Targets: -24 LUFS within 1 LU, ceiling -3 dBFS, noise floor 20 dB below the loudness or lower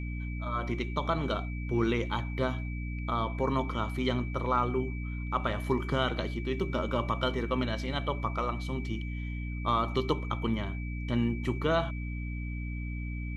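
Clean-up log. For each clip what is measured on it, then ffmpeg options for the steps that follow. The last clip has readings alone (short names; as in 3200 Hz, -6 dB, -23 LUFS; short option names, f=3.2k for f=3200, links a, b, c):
hum 60 Hz; harmonics up to 300 Hz; hum level -33 dBFS; steady tone 2300 Hz; tone level -45 dBFS; loudness -32.0 LUFS; peak -13.0 dBFS; loudness target -24.0 LUFS
-> -af "bandreject=f=60:t=h:w=4,bandreject=f=120:t=h:w=4,bandreject=f=180:t=h:w=4,bandreject=f=240:t=h:w=4,bandreject=f=300:t=h:w=4"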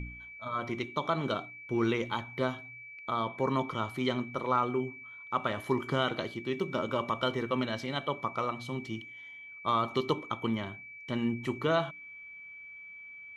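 hum none; steady tone 2300 Hz; tone level -45 dBFS
-> -af "bandreject=f=2.3k:w=30"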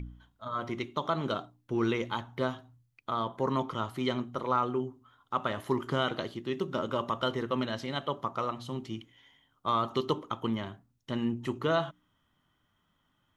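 steady tone none; loudness -33.0 LUFS; peak -14.0 dBFS; loudness target -24.0 LUFS
-> -af "volume=9dB"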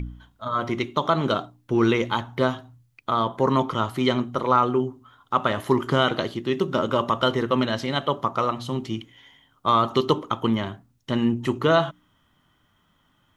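loudness -24.0 LUFS; peak -5.0 dBFS; noise floor -66 dBFS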